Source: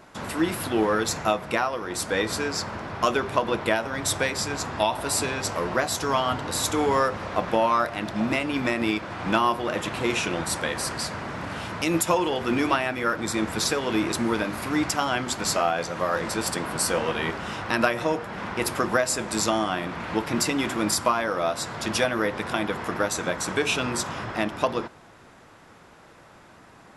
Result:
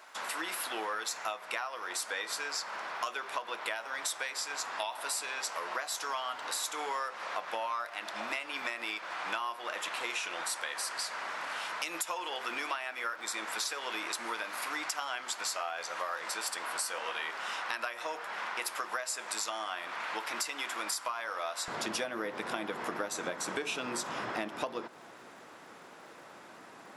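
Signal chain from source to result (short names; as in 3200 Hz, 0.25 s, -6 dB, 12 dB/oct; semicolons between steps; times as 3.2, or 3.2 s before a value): HPF 890 Hz 12 dB/oct, from 21.68 s 250 Hz; compressor 5:1, threshold -33 dBFS, peak gain reduction 14 dB; crackle 120/s -54 dBFS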